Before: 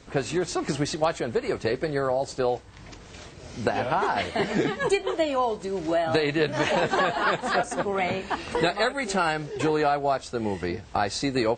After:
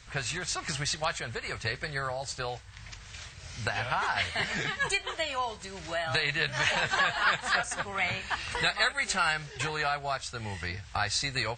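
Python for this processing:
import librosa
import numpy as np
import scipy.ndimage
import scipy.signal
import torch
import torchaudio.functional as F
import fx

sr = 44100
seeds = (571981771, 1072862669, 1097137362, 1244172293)

y = fx.curve_eq(x, sr, hz=(110.0, 300.0, 1700.0), db=(0, -20, 2))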